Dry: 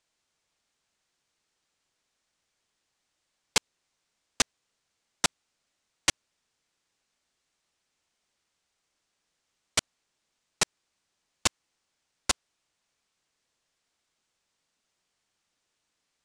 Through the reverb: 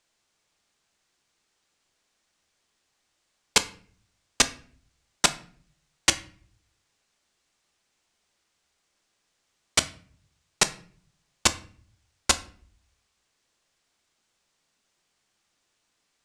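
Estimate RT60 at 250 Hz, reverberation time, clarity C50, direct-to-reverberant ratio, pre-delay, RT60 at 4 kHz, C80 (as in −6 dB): 0.75 s, 0.50 s, 16.5 dB, 10.0 dB, 3 ms, 0.35 s, 20.5 dB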